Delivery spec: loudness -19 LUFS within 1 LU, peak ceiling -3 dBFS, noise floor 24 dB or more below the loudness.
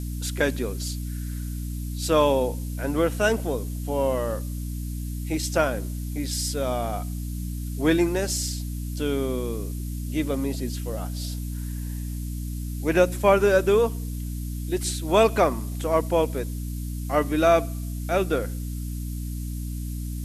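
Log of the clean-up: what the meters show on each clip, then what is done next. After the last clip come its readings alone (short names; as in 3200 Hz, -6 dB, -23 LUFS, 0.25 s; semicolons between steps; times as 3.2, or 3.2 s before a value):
hum 60 Hz; harmonics up to 300 Hz; hum level -28 dBFS; noise floor -31 dBFS; noise floor target -50 dBFS; loudness -26.0 LUFS; peak -6.0 dBFS; loudness target -19.0 LUFS
-> de-hum 60 Hz, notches 5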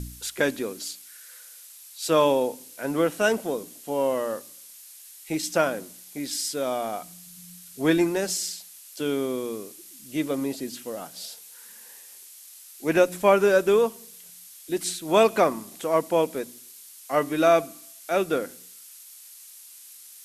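hum none; noise floor -47 dBFS; noise floor target -49 dBFS
-> noise print and reduce 6 dB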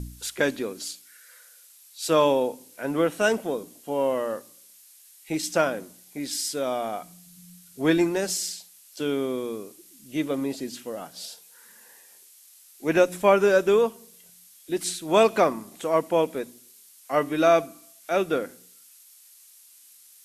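noise floor -53 dBFS; loudness -25.0 LUFS; peak -6.0 dBFS; loudness target -19.0 LUFS
-> gain +6 dB; limiter -3 dBFS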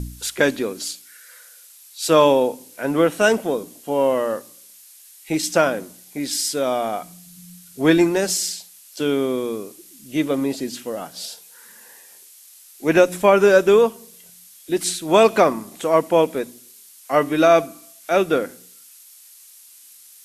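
loudness -19.5 LUFS; peak -3.0 dBFS; noise floor -47 dBFS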